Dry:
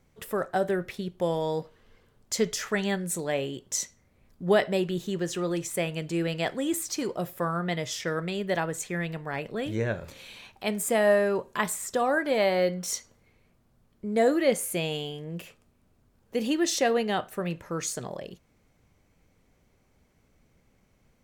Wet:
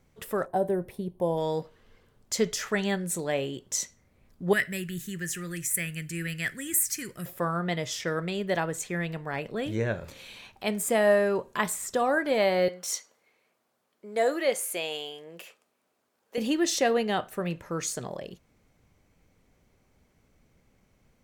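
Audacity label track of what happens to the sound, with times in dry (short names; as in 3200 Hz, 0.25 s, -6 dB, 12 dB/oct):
0.460000	1.380000	spectral gain 1100–8400 Hz -12 dB
4.530000	7.260000	EQ curve 140 Hz 0 dB, 840 Hz -22 dB, 1800 Hz +7 dB, 3700 Hz -8 dB, 10000 Hz +11 dB
12.680000	16.380000	HPF 480 Hz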